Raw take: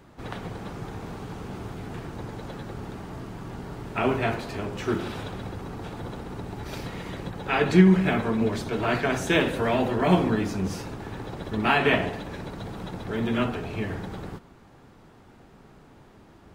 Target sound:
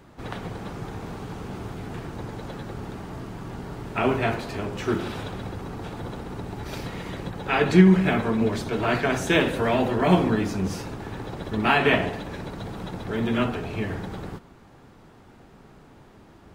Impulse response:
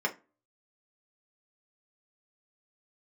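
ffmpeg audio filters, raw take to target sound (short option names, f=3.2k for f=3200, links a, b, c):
-af "volume=1.5dB"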